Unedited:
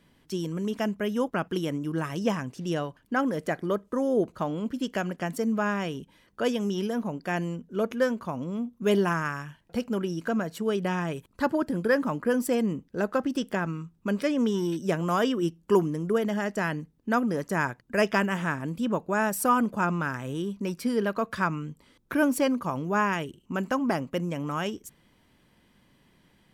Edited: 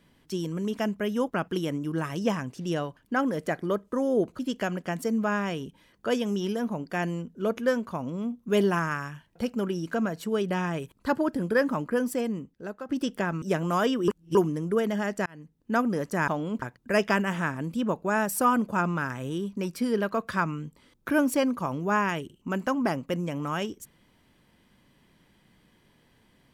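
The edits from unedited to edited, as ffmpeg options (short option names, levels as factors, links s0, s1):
-filter_complex "[0:a]asplit=9[s0][s1][s2][s3][s4][s5][s6][s7][s8];[s0]atrim=end=4.392[s9];[s1]atrim=start=4.728:end=13.23,asetpts=PTS-STARTPTS,afade=t=out:st=7.392:d=1.11:silence=0.199526[s10];[s2]atrim=start=13.23:end=13.762,asetpts=PTS-STARTPTS,afade=t=in:d=0.004:c=hsin:silence=0.199526[s11];[s3]atrim=start=14.798:end=15.462[s12];[s4]atrim=start=15.458:end=15.732,asetpts=PTS-STARTPTS,areverse[s13];[s5]atrim=start=15.728:end=16.64,asetpts=PTS-STARTPTS,afade=t=out:st=0.908:d=0.004:c=hsin[s14];[s6]atrim=start=16.64:end=17.662,asetpts=PTS-STARTPTS,afade=t=in:d=0.5[s15];[s7]atrim=start=4.388:end=4.732[s16];[s8]atrim=start=17.658[s17];[s10][s11]concat=n=2:v=0:a=1[s18];[s9][s18]acrossfade=d=0.004:c1=hsin:c2=hsin[s19];[s19][s12]acrossfade=d=0.004:c1=hsin:c2=hsin[s20];[s20][s13]acrossfade=d=0.004:c1=hsin:c2=hsin[s21];[s14][s15]concat=n=2:v=0:a=1[s22];[s21][s22]acrossfade=d=0.004:c1=hsin:c2=hsin[s23];[s23][s16]acrossfade=d=0.004:c1=hsin:c2=hsin[s24];[s24][s17]acrossfade=d=0.004:c1=hsin:c2=hsin"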